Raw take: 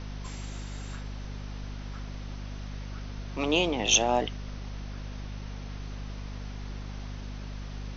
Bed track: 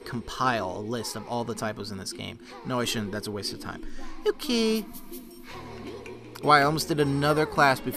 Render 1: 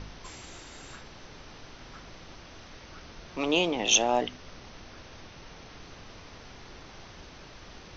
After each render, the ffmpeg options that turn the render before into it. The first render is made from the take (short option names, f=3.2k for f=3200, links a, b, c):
-af "bandreject=f=50:t=h:w=4,bandreject=f=100:t=h:w=4,bandreject=f=150:t=h:w=4,bandreject=f=200:t=h:w=4,bandreject=f=250:t=h:w=4"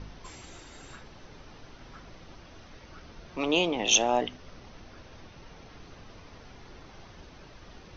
-af "afftdn=nr=6:nf=-49"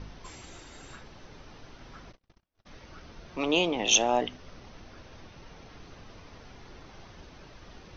-filter_complex "[0:a]asplit=3[a][b][c];[a]afade=t=out:st=2.11:d=0.02[d];[b]agate=range=-40dB:threshold=-45dB:ratio=16:release=100:detection=peak,afade=t=in:st=2.11:d=0.02,afade=t=out:st=2.65:d=0.02[e];[c]afade=t=in:st=2.65:d=0.02[f];[d][e][f]amix=inputs=3:normalize=0"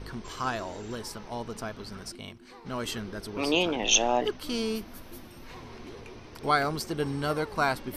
-filter_complex "[1:a]volume=-6dB[a];[0:a][a]amix=inputs=2:normalize=0"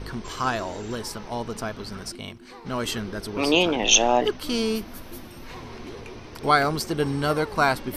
-af "volume=5.5dB,alimiter=limit=-3dB:level=0:latency=1"